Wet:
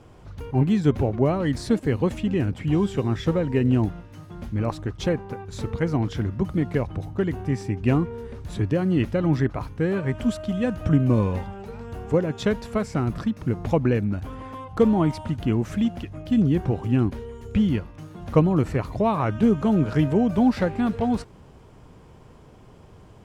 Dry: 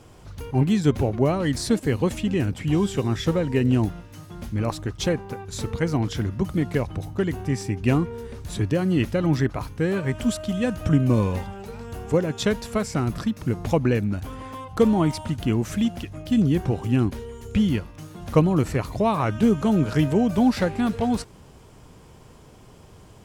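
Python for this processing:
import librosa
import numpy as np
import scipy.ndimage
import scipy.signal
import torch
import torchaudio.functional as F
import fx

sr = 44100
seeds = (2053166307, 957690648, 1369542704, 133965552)

y = fx.high_shelf(x, sr, hz=3900.0, db=-11.5)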